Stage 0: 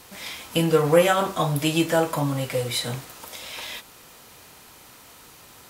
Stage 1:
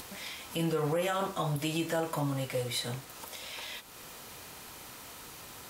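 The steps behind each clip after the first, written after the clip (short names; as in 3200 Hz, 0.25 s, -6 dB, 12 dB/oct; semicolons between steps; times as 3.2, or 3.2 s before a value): upward compressor, threshold -31 dBFS; limiter -15 dBFS, peak gain reduction 10 dB; gain -7 dB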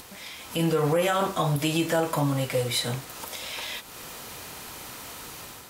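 AGC gain up to 7 dB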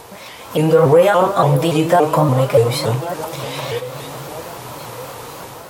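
regenerating reverse delay 0.633 s, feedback 59%, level -13 dB; graphic EQ 125/500/1000 Hz +9/+10/+8 dB; shaped vibrato saw up 3.5 Hz, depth 160 cents; gain +2.5 dB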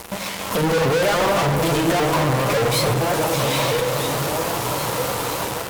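fuzz box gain 33 dB, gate -35 dBFS; reverb RT60 2.1 s, pre-delay 5 ms, DRR 8 dB; gain -5 dB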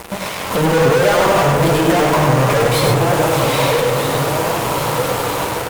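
in parallel at -4 dB: sample-rate reducer 7700 Hz; on the sum: echo 0.101 s -4 dB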